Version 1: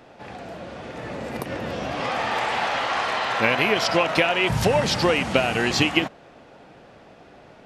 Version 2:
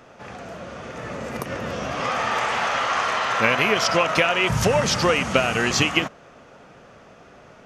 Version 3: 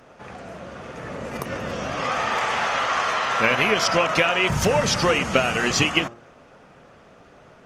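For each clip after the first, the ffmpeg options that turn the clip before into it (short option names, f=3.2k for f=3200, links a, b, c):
-af "equalizer=f=315:t=o:w=0.33:g=-5,equalizer=f=800:t=o:w=0.33:g=-4,equalizer=f=1.25k:t=o:w=0.33:g=6,equalizer=f=4k:t=o:w=0.33:g=-4,equalizer=f=6.3k:t=o:w=0.33:g=7,volume=1dB"
-af "bandreject=f=116.7:t=h:w=4,bandreject=f=233.4:t=h:w=4,bandreject=f=350.1:t=h:w=4,bandreject=f=466.8:t=h:w=4,bandreject=f=583.5:t=h:w=4,bandreject=f=700.2:t=h:w=4,bandreject=f=816.9:t=h:w=4,bandreject=f=933.6:t=h:w=4,bandreject=f=1.0503k:t=h:w=4,bandreject=f=1.167k:t=h:w=4,bandreject=f=1.2837k:t=h:w=4" -ar 48000 -c:a libopus -b:a 24k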